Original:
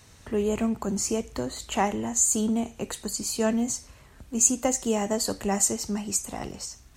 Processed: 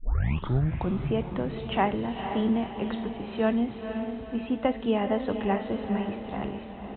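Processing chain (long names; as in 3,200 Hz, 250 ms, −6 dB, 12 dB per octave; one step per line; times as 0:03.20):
turntable start at the beginning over 0.96 s
on a send: feedback delay with all-pass diffusion 482 ms, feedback 51%, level −7 dB
on the sum: downsampling to 8,000 Hz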